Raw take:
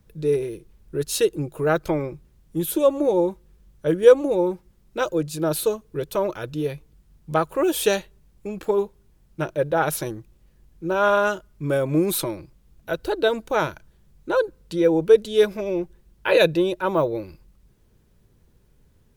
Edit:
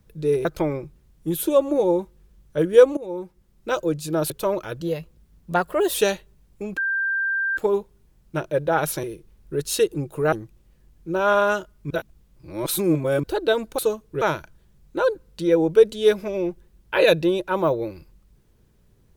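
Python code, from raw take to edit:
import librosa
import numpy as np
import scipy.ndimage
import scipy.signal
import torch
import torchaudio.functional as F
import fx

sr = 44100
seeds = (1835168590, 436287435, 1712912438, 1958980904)

y = fx.edit(x, sr, fx.move(start_s=0.45, length_s=1.29, to_s=10.08),
    fx.fade_in_from(start_s=4.26, length_s=0.72, floor_db=-16.0),
    fx.move(start_s=5.59, length_s=0.43, to_s=13.54),
    fx.speed_span(start_s=6.52, length_s=1.27, speed=1.11),
    fx.insert_tone(at_s=8.62, length_s=0.8, hz=1580.0, db=-20.5),
    fx.reverse_span(start_s=11.66, length_s=1.33), tone=tone)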